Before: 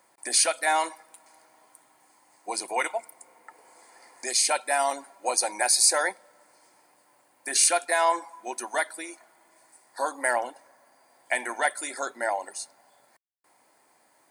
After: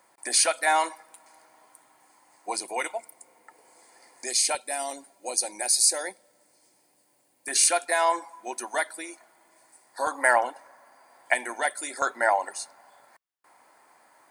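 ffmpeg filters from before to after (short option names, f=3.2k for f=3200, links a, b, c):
-af "asetnsamples=n=441:p=0,asendcmd='2.57 equalizer g -4.5;4.55 equalizer g -12.5;7.48 equalizer g -0.5;10.07 equalizer g 7;11.34 equalizer g -2.5;12.02 equalizer g 8',equalizer=f=1.2k:t=o:w=1.9:g=2"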